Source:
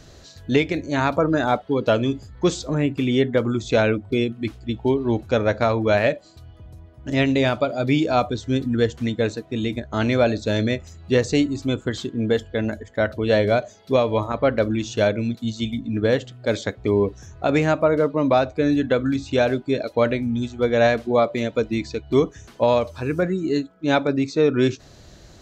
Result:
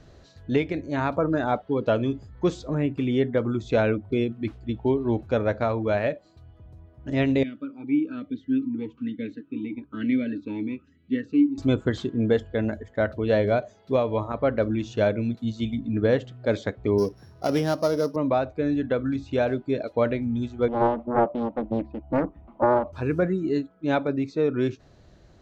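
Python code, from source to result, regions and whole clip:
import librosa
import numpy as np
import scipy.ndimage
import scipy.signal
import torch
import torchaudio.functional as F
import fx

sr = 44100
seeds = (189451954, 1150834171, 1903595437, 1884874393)

y = fx.chain(x, sr, fx.notch_comb(f0_hz=350.0),
    fx.vowel_sweep(vowels='i-u', hz=1.1), at=(7.43, 11.58))
y = fx.chain(y, sr, fx.sample_sort(block=8),
    fx.highpass(hz=110.0, slope=12), at=(16.98, 18.16))
y = fx.chain(y, sr, fx.lowpass(hz=1900.0, slope=24),
    fx.fixed_phaser(hz=440.0, stages=6),
    fx.doppler_dist(depth_ms=0.89), at=(20.68, 22.93))
y = fx.lowpass(y, sr, hz=1800.0, slope=6)
y = fx.rider(y, sr, range_db=10, speed_s=2.0)
y = y * 10.0 ** (-3.0 / 20.0)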